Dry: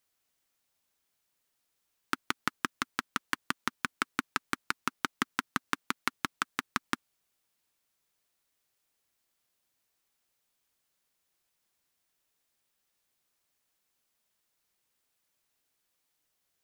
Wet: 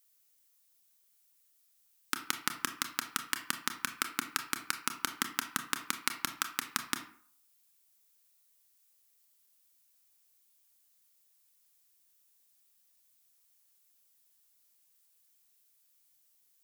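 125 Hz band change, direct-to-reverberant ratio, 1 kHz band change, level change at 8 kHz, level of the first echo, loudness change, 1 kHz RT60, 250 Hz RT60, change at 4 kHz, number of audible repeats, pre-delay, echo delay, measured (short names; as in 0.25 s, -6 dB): -5.5 dB, 7.0 dB, -3.5 dB, +7.5 dB, none, 0.0 dB, 0.55 s, 0.45 s, +2.0 dB, none, 25 ms, none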